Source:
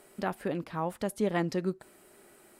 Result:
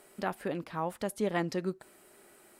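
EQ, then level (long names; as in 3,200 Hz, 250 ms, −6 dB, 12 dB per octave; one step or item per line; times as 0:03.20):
low-shelf EQ 370 Hz −4 dB
0.0 dB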